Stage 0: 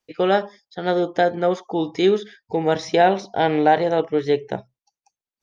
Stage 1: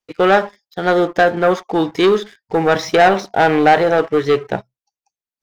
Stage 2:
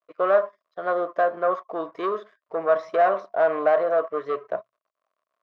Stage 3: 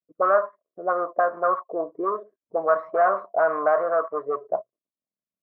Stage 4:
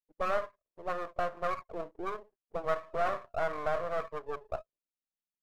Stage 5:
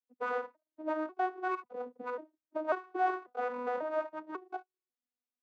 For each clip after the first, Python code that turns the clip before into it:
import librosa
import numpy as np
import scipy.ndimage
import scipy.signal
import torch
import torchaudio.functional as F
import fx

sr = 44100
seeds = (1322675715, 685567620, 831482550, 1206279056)

y1 = fx.leveller(x, sr, passes=2)
y1 = fx.dynamic_eq(y1, sr, hz=1400.0, q=1.0, threshold_db=-29.0, ratio=4.0, max_db=7)
y1 = F.gain(torch.from_numpy(y1), -1.5).numpy()
y2 = fx.dmg_crackle(y1, sr, seeds[0], per_s=82.0, level_db=-43.0)
y2 = fx.double_bandpass(y2, sr, hz=830.0, octaves=0.77)
y3 = fx.envelope_lowpass(y2, sr, base_hz=200.0, top_hz=1300.0, q=2.8, full_db=-20.5, direction='up')
y3 = F.gain(torch.from_numpy(y3), -3.5).numpy()
y4 = np.where(y3 < 0.0, 10.0 ** (-12.0 / 20.0) * y3, y3)
y4 = F.gain(torch.from_numpy(y4), -8.0).numpy()
y5 = fx.vocoder_arp(y4, sr, chord='major triad', root=59, every_ms=543)